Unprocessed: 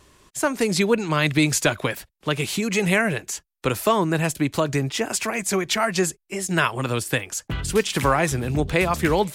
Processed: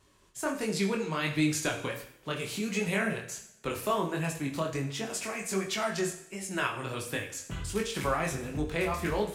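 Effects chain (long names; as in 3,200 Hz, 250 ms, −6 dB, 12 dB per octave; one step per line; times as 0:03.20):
chorus effect 1.4 Hz, delay 19 ms, depth 5.9 ms
coupled-rooms reverb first 0.66 s, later 2.1 s, from −26 dB, DRR 4.5 dB
level −8 dB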